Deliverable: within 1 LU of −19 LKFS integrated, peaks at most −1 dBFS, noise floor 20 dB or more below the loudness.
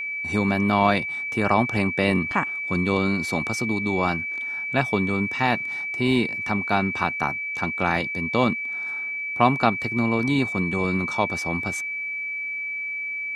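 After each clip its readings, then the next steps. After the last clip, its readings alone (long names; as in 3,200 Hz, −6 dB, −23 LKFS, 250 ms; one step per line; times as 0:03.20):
interfering tone 2,300 Hz; level of the tone −27 dBFS; integrated loudness −23.5 LKFS; sample peak −2.5 dBFS; target loudness −19.0 LKFS
→ notch filter 2,300 Hz, Q 30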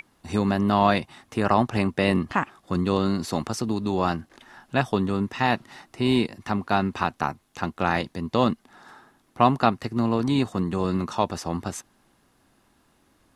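interfering tone none found; integrated loudness −25.0 LKFS; sample peak −3.0 dBFS; target loudness −19.0 LKFS
→ level +6 dB
brickwall limiter −1 dBFS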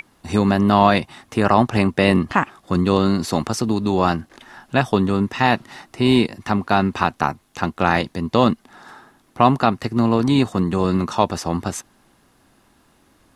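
integrated loudness −19.5 LKFS; sample peak −1.0 dBFS; background noise floor −58 dBFS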